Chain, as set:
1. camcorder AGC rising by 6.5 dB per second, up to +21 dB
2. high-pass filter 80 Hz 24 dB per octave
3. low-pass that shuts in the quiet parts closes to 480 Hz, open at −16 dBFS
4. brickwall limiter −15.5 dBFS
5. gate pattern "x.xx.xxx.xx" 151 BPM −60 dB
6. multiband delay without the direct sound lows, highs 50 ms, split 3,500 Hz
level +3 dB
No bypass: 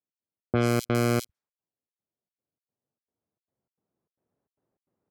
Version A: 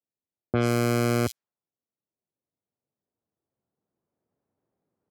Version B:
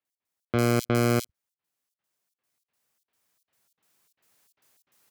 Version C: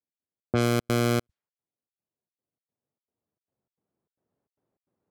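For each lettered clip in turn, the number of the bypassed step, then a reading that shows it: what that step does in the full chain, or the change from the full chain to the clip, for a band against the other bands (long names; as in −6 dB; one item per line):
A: 5, change in momentary loudness spread +1 LU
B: 3, change in momentary loudness spread +1 LU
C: 6, echo-to-direct ratio −18.0 dB to none audible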